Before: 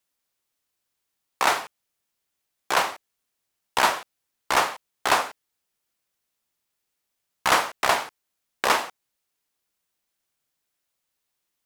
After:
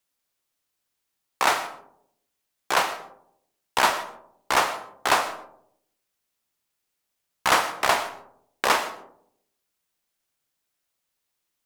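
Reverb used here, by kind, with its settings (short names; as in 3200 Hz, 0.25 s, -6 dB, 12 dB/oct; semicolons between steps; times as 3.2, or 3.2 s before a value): digital reverb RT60 0.71 s, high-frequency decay 0.3×, pre-delay 75 ms, DRR 13.5 dB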